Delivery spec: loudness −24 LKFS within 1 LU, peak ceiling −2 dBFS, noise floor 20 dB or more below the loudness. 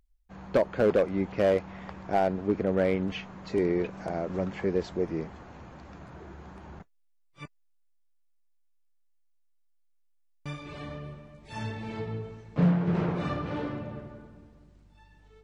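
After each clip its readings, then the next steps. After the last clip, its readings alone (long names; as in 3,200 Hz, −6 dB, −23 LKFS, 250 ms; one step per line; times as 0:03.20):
share of clipped samples 0.4%; peaks flattened at −16.5 dBFS; integrated loudness −29.5 LKFS; sample peak −16.5 dBFS; target loudness −24.0 LKFS
→ clipped peaks rebuilt −16.5 dBFS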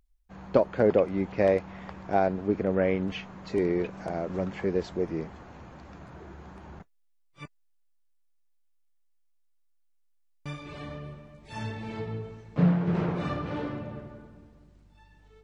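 share of clipped samples 0.0%; integrated loudness −28.5 LKFS; sample peak −7.5 dBFS; target loudness −24.0 LKFS
→ level +4.5 dB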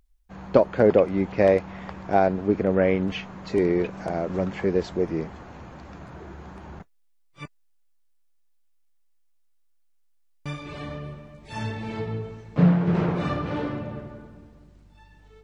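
integrated loudness −24.0 LKFS; sample peak −3.0 dBFS; background noise floor −62 dBFS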